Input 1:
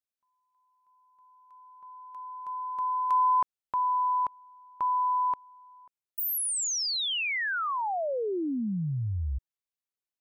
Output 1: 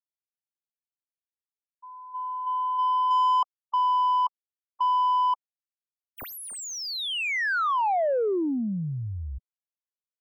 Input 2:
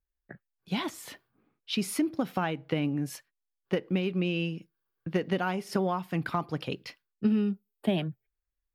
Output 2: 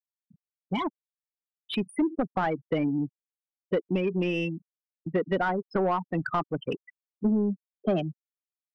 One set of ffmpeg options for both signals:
-filter_complex "[0:a]afftfilt=real='re*gte(hypot(re,im),0.0501)':imag='im*gte(hypot(re,im),0.0501)':win_size=1024:overlap=0.75,asplit=2[a][b];[b]highpass=f=720:p=1,volume=18dB,asoftclip=type=tanh:threshold=-14.5dB[c];[a][c]amix=inputs=2:normalize=0,lowpass=f=1.2k:p=1,volume=-6dB"

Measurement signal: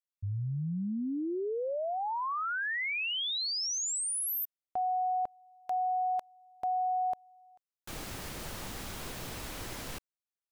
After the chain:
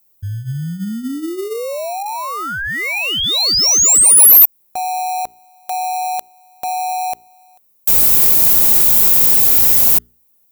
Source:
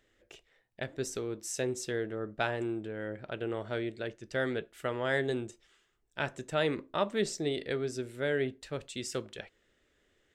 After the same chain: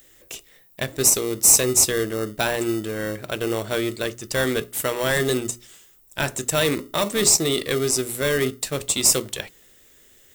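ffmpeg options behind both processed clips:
-filter_complex "[0:a]aemphasis=mode=production:type=50fm,bandreject=f=60:t=h:w=6,bandreject=f=120:t=h:w=6,bandreject=f=180:t=h:w=6,bandreject=f=240:t=h:w=6,bandreject=f=300:t=h:w=6,bandreject=f=360:t=h:w=6,bandreject=f=420:t=h:w=6,asplit=2[a][b];[b]acrusher=samples=27:mix=1:aa=0.000001,volume=-9.5dB[c];[a][c]amix=inputs=2:normalize=0,apsyclip=24dB,crystalizer=i=2:c=0,volume=-15dB"

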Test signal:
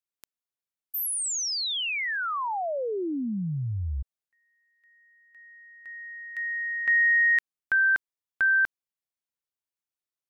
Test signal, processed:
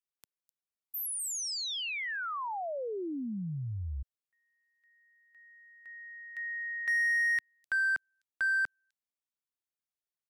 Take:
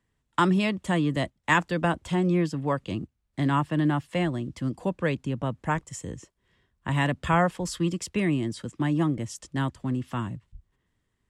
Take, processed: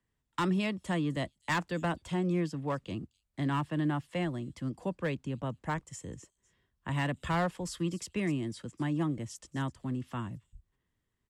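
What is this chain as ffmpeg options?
-filter_complex "[0:a]acrossover=split=200|4500[a][b][c];[b]asoftclip=type=hard:threshold=-19.5dB[d];[c]aecho=1:1:255:0.237[e];[a][d][e]amix=inputs=3:normalize=0,volume=-6.5dB"

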